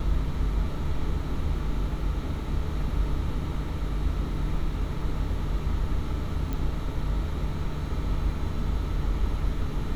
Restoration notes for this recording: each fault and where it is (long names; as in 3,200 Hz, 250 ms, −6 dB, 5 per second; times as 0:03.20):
0:06.53: click